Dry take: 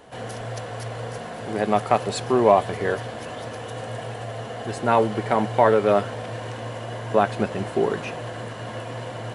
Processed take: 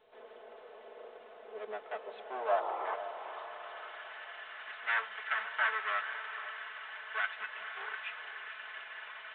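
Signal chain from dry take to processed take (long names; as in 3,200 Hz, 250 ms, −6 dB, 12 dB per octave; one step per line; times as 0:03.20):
lower of the sound and its delayed copy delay 4.6 ms
high-pass filter 230 Hz 12 dB per octave
first difference
sound drawn into the spectrogram noise, 0:02.51–0:02.95, 320–1,400 Hz −44 dBFS
in parallel at −6 dB: soft clipping −30 dBFS, distortion −15 dB
on the sum: band-pass filter sweep 460 Hz → 1,600 Hz, 0:01.79–0:04.20
feedback delay with all-pass diffusion 486 ms, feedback 49%, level −10.5 dB
level +7.5 dB
A-law companding 64 kbit/s 8,000 Hz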